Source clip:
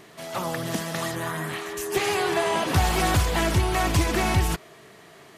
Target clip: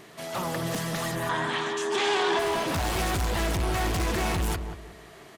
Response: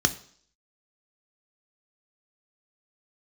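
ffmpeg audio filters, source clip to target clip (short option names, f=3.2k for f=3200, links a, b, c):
-filter_complex "[0:a]asoftclip=type=hard:threshold=-26dB,asettb=1/sr,asplit=3[a][b][c];[a]atrim=end=1.294[d];[b]atrim=start=1.29:end=2.39,asetpts=PTS-STARTPTS,afade=t=in:d=0.004:c=qsin,afade=t=out:st=1.096:d=0.004:c=qsin,highpass=210,equalizer=f=250:t=q:w=4:g=7,equalizer=f=940:t=q:w=4:g=10,equalizer=f=1.6k:t=q:w=4:g=5,equalizer=f=3.4k:t=q:w=4:g=9,lowpass=f=8k:w=0.5412,lowpass=f=8k:w=1.3066[e];[c]atrim=start=2.386[f];[d][e]acrossfade=d=0.004:c1=hsin:c2=qsin[g];[g][f]acrossfade=d=0.004:c1=qsin:c2=hsin,asplit=2[h][i];[i]adelay=183,lowpass=f=950:p=1,volume=-6dB,asplit=2[j][k];[k]adelay=183,lowpass=f=950:p=1,volume=0.3,asplit=2[l][m];[m]adelay=183,lowpass=f=950:p=1,volume=0.3,asplit=2[n][o];[o]adelay=183,lowpass=f=950:p=1,volume=0.3[p];[h][j][l][n][p]amix=inputs=5:normalize=0"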